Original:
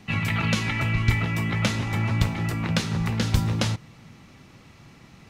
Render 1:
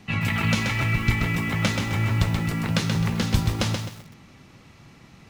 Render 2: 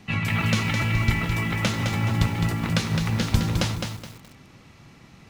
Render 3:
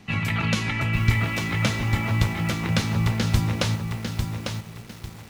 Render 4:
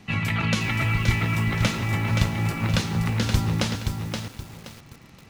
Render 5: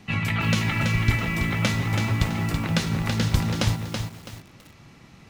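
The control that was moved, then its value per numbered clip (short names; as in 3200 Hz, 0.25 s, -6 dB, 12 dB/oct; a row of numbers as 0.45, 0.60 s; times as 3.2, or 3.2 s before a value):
lo-fi delay, time: 0.13, 0.211, 0.849, 0.524, 0.329 s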